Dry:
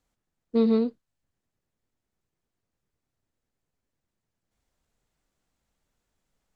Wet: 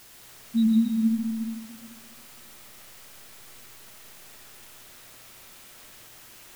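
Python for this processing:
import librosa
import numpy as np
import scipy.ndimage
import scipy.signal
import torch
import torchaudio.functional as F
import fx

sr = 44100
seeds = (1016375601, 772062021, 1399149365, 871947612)

p1 = scipy.signal.sosfilt(scipy.signal.cheby2(4, 40, [330.0, 1200.0], 'bandstop', fs=sr, output='sos'), x)
p2 = fx.spec_gate(p1, sr, threshold_db=-25, keep='strong')
p3 = fx.quant_dither(p2, sr, seeds[0], bits=8, dither='triangular')
p4 = p2 + F.gain(torch.from_numpy(p3), -8.0).numpy()
p5 = fx.dmg_buzz(p4, sr, base_hz=120.0, harmonics=36, level_db=-74.0, tilt_db=-4, odd_only=False)
p6 = p5 + fx.echo_stepped(p5, sr, ms=114, hz=2500.0, octaves=-0.7, feedback_pct=70, wet_db=-3.5, dry=0)
p7 = fx.rev_freeverb(p6, sr, rt60_s=2.0, hf_ratio=0.35, predelay_ms=90, drr_db=1.0)
y = F.gain(torch.from_numpy(p7), 5.5).numpy()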